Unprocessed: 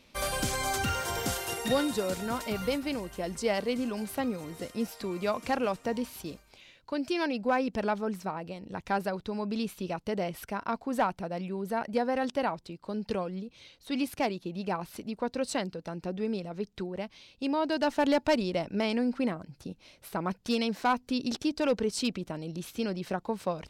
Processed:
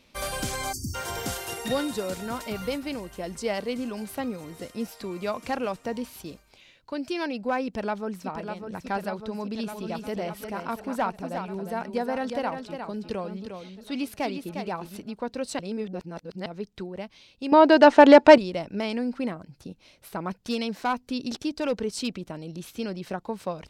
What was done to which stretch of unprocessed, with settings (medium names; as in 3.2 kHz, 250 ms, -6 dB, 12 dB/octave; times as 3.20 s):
0.72–0.95 s: spectral selection erased 370–4300 Hz
7.64–8.26 s: echo throw 600 ms, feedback 80%, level -6.5 dB
9.37–15.02 s: delay 355 ms -7 dB
15.59–16.46 s: reverse
17.52–18.38 s: FFT filter 100 Hz 0 dB, 400 Hz +15 dB, 1.8 kHz +13 dB, 9 kHz +2 dB, 13 kHz -14 dB